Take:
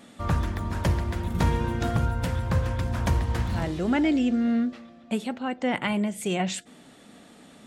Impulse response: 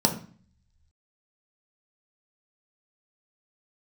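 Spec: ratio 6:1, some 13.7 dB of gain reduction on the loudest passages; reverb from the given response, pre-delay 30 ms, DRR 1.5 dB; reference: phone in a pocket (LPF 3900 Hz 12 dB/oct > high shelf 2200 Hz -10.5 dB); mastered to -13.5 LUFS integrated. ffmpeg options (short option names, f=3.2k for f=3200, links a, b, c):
-filter_complex "[0:a]acompressor=threshold=-34dB:ratio=6,asplit=2[a][b];[1:a]atrim=start_sample=2205,adelay=30[c];[b][c]afir=irnorm=-1:irlink=0,volume=-14dB[d];[a][d]amix=inputs=2:normalize=0,lowpass=3.9k,highshelf=f=2.2k:g=-10.5,volume=17.5dB"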